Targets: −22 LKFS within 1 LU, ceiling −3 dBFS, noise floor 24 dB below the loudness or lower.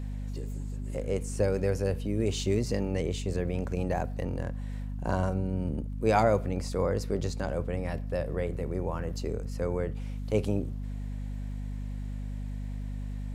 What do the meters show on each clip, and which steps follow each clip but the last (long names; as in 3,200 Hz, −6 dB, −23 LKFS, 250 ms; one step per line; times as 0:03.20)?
crackle rate 31 per second; mains hum 50 Hz; hum harmonics up to 250 Hz; level of the hum −32 dBFS; integrated loudness −32.0 LKFS; sample peak −10.0 dBFS; target loudness −22.0 LKFS
→ click removal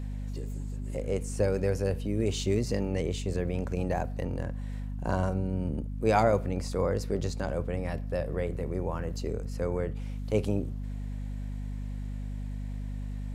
crackle rate 0.15 per second; mains hum 50 Hz; hum harmonics up to 250 Hz; level of the hum −32 dBFS
→ mains-hum notches 50/100/150/200/250 Hz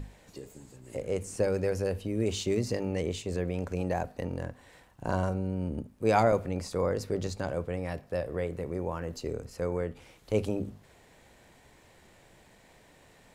mains hum none found; integrated loudness −32.0 LKFS; sample peak −10.5 dBFS; target loudness −22.0 LKFS
→ level +10 dB
brickwall limiter −3 dBFS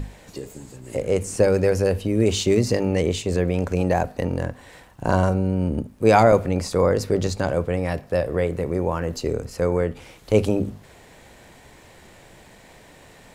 integrated loudness −22.0 LKFS; sample peak −3.0 dBFS; background noise floor −49 dBFS